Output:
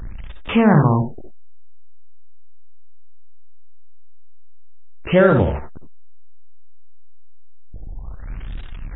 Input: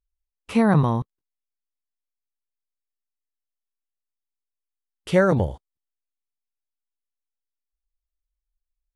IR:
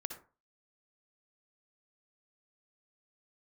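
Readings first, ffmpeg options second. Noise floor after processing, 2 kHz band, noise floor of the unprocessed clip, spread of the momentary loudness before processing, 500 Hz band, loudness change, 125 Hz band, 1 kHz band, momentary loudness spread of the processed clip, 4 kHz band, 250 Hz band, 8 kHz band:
−30 dBFS, +5.5 dB, below −85 dBFS, 10 LU, +5.5 dB, +4.5 dB, +5.0 dB, +5.0 dB, 22 LU, +6.5 dB, +5.0 dB, below −30 dB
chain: -filter_complex "[0:a]aeval=exprs='val(0)+0.5*0.0355*sgn(val(0))':channel_layout=same,asplit=2[link_01][link_02];[link_02]acompressor=threshold=-28dB:ratio=6,volume=-3dB[link_03];[link_01][link_03]amix=inputs=2:normalize=0[link_04];[1:a]atrim=start_sample=2205,atrim=end_sample=4410[link_05];[link_04][link_05]afir=irnorm=-1:irlink=0,afftfilt=real='re*lt(b*sr/1024,800*pow(3900/800,0.5+0.5*sin(2*PI*0.61*pts/sr)))':imag='im*lt(b*sr/1024,800*pow(3900/800,0.5+0.5*sin(2*PI*0.61*pts/sr)))':win_size=1024:overlap=0.75,volume=4dB"

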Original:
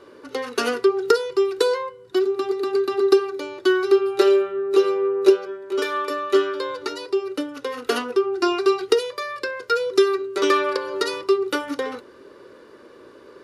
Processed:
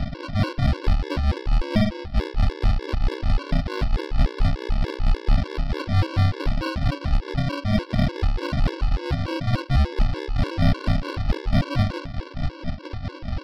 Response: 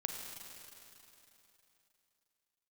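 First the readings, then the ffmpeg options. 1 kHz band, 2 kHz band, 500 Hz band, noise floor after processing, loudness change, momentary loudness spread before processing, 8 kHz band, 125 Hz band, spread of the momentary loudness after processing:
−5.5 dB, −4.5 dB, −14.0 dB, −39 dBFS, −3.5 dB, 11 LU, below −10 dB, can't be measured, 6 LU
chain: -filter_complex "[0:a]asplit=2[link_01][link_02];[link_02]highpass=frequency=720:poles=1,volume=40dB,asoftclip=type=tanh:threshold=-3dB[link_03];[link_01][link_03]amix=inputs=2:normalize=0,lowpass=frequency=1600:poles=1,volume=-6dB,aresample=11025,acrusher=samples=26:mix=1:aa=0.000001,aresample=44100,tremolo=f=4.5:d=0.57,aeval=exprs='0.708*(cos(1*acos(clip(val(0)/0.708,-1,1)))-cos(1*PI/2))+0.0282*(cos(8*acos(clip(val(0)/0.708,-1,1)))-cos(8*PI/2))':channel_layout=same,asplit=2[link_04][link_05];[1:a]atrim=start_sample=2205,asetrate=70560,aresample=44100[link_06];[link_05][link_06]afir=irnorm=-1:irlink=0,volume=-16dB[link_07];[link_04][link_07]amix=inputs=2:normalize=0,afftfilt=real='re*gt(sin(2*PI*3.4*pts/sr)*(1-2*mod(floor(b*sr/1024/290),2)),0)':imag='im*gt(sin(2*PI*3.4*pts/sr)*(1-2*mod(floor(b*sr/1024/290),2)),0)':win_size=1024:overlap=0.75,volume=-5dB"

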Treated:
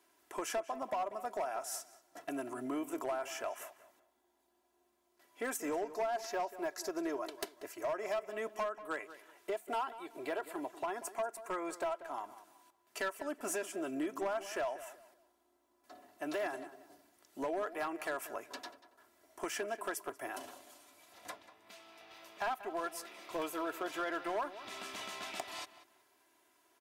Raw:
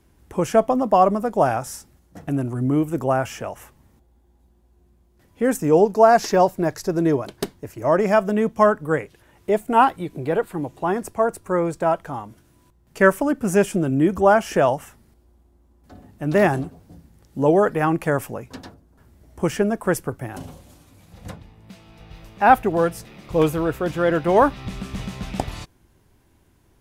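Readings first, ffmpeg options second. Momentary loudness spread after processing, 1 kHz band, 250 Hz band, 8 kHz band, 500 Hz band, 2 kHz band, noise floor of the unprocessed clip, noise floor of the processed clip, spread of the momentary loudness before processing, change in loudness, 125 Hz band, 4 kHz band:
15 LU, −18.5 dB, −20.5 dB, −8.5 dB, −19.0 dB, −15.0 dB, −59 dBFS, −75 dBFS, 17 LU, −19.0 dB, −37.0 dB, −9.0 dB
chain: -filter_complex "[0:a]highpass=610,aecho=1:1:3:0.63,acompressor=threshold=-29dB:ratio=5,asoftclip=type=hard:threshold=-25.5dB,asplit=2[link_01][link_02];[link_02]adelay=188,lowpass=frequency=3000:poles=1,volume=-14dB,asplit=2[link_03][link_04];[link_04]adelay=188,lowpass=frequency=3000:poles=1,volume=0.28,asplit=2[link_05][link_06];[link_06]adelay=188,lowpass=frequency=3000:poles=1,volume=0.28[link_07];[link_03][link_05][link_07]amix=inputs=3:normalize=0[link_08];[link_01][link_08]amix=inputs=2:normalize=0,volume=-5dB"

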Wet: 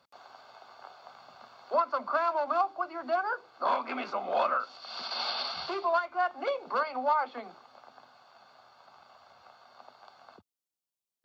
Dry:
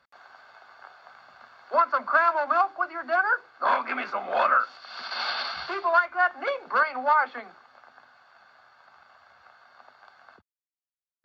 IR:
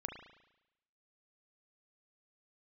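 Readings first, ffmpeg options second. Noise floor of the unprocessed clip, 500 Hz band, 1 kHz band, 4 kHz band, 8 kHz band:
below −85 dBFS, −2.0 dB, −5.5 dB, −1.0 dB, can't be measured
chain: -filter_complex "[0:a]equalizer=frequency=1700:width_type=o:width=0.82:gain=-13.5,asplit=2[link_01][link_02];[link_02]acompressor=threshold=-39dB:ratio=6,volume=1dB[link_03];[link_01][link_03]amix=inputs=2:normalize=0,highpass=97,volume=-3dB"

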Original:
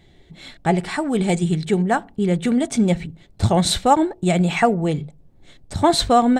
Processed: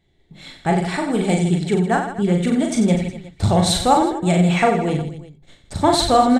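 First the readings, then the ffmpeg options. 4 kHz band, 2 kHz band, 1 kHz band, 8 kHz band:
+1.0 dB, +1.0 dB, +1.5 dB, +1.0 dB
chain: -filter_complex "[0:a]agate=range=-12dB:threshold=-45dB:ratio=16:detection=peak,asplit=2[link_01][link_02];[link_02]aecho=0:1:40|92|159.6|247.5|361.7:0.631|0.398|0.251|0.158|0.1[link_03];[link_01][link_03]amix=inputs=2:normalize=0,volume=-1dB"

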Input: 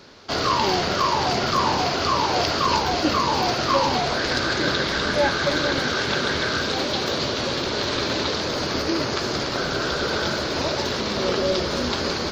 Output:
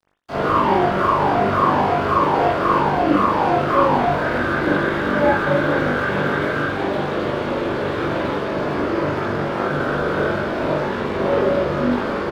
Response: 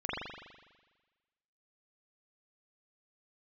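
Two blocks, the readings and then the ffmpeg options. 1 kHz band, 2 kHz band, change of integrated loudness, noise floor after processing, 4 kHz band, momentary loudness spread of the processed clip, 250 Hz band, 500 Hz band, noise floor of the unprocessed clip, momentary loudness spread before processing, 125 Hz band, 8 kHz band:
+4.5 dB, +2.0 dB, +3.0 dB, −24 dBFS, −11.5 dB, 6 LU, +5.5 dB, +5.0 dB, −26 dBFS, 4 LU, +4.5 dB, below −15 dB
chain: -filter_complex "[0:a]acrossover=split=2800[link_01][link_02];[link_02]acompressor=threshold=-41dB:ratio=4:attack=1:release=60[link_03];[link_01][link_03]amix=inputs=2:normalize=0,highshelf=frequency=3200:gain=-9.5,aeval=exprs='sgn(val(0))*max(abs(val(0))-0.00944,0)':channel_layout=same,asplit=2[link_04][link_05];[link_05]adelay=20,volume=-4dB[link_06];[link_04][link_06]amix=inputs=2:normalize=0[link_07];[1:a]atrim=start_sample=2205,atrim=end_sample=3969[link_08];[link_07][link_08]afir=irnorm=-1:irlink=0"

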